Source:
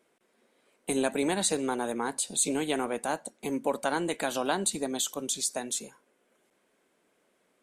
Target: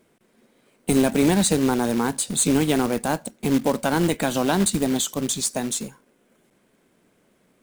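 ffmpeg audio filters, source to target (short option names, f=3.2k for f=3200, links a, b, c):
-af "bass=f=250:g=15,treble=f=4k:g=0,acrusher=bits=3:mode=log:mix=0:aa=0.000001,asoftclip=type=hard:threshold=-15dB,volume=5dB"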